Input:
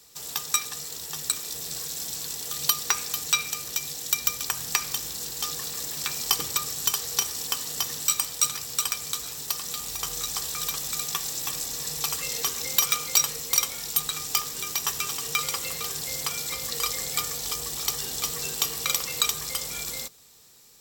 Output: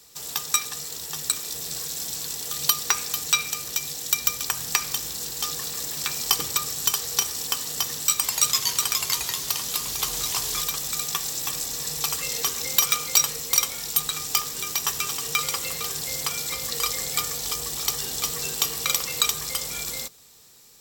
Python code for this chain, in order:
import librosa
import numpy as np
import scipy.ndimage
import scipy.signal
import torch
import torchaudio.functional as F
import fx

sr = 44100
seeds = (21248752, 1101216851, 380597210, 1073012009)

y = fx.echo_pitch(x, sr, ms=85, semitones=-2, count=2, db_per_echo=-3.0, at=(8.15, 10.62))
y = F.gain(torch.from_numpy(y), 2.0).numpy()